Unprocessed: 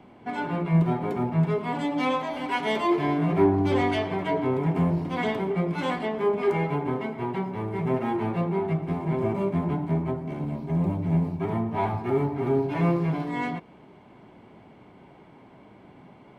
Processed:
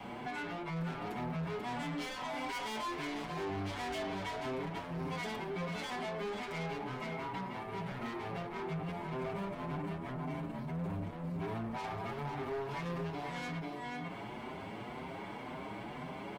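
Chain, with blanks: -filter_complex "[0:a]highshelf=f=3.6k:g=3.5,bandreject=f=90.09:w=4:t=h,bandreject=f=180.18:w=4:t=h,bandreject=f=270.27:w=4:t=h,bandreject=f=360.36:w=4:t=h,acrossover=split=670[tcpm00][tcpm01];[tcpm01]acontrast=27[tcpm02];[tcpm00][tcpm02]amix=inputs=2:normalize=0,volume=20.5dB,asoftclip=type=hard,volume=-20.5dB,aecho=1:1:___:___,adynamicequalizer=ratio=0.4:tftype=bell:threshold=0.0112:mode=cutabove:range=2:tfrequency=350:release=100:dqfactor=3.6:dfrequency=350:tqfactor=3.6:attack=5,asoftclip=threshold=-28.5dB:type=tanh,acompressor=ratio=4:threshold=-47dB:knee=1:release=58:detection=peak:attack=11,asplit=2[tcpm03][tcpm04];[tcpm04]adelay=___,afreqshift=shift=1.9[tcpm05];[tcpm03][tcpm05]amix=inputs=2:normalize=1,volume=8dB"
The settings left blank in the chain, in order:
489, 0.422, 6.8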